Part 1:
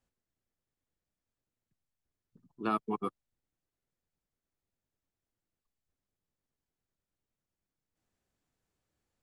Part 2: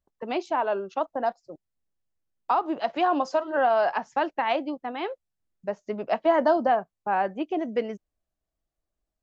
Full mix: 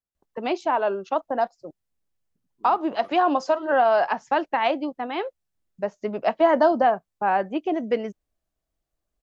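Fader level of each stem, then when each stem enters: -15.0, +3.0 dB; 0.00, 0.15 s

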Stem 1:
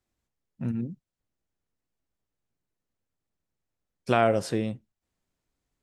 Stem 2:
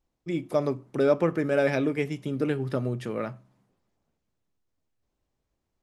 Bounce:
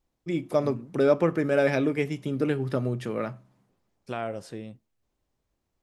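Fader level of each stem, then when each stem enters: -10.5, +1.0 dB; 0.00, 0.00 s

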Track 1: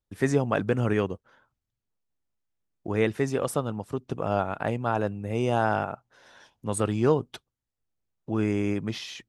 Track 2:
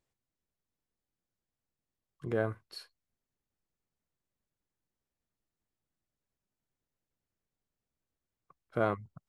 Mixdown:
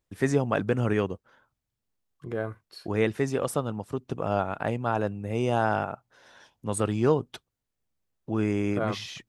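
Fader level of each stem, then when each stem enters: -0.5, 0.0 dB; 0.00, 0.00 s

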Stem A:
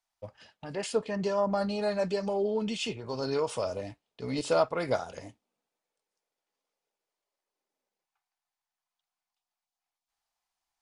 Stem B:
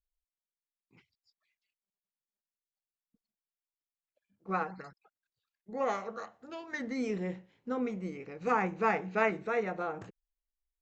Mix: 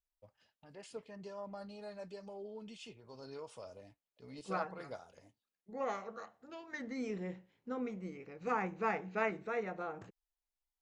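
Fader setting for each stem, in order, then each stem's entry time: -18.0, -6.0 dB; 0.00, 0.00 s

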